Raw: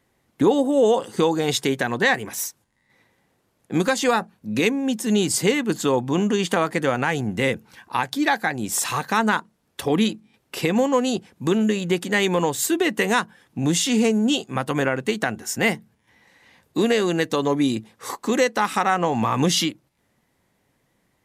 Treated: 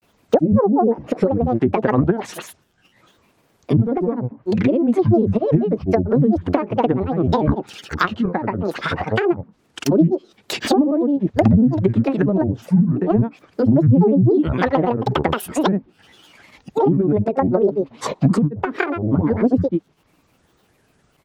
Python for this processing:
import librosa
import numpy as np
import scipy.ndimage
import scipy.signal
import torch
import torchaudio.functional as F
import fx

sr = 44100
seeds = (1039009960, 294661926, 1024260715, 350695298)

y = fx.env_lowpass_down(x, sr, base_hz=300.0, full_db=-17.0)
y = fx.granulator(y, sr, seeds[0], grain_ms=100.0, per_s=20.0, spray_ms=100.0, spread_st=12)
y = F.gain(torch.from_numpy(y), 9.0).numpy()